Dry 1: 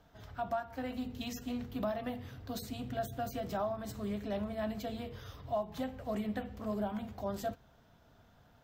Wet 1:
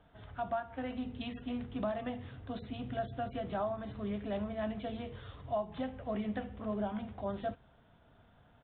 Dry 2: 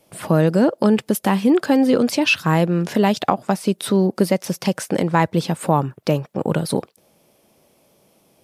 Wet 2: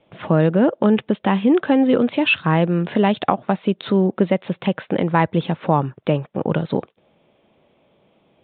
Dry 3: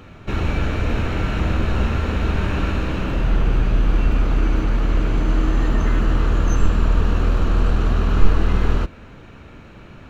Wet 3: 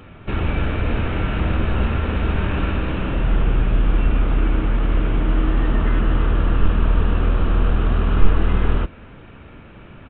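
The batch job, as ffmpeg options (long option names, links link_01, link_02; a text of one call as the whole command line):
ffmpeg -i in.wav -af "aresample=8000,aresample=44100" out.wav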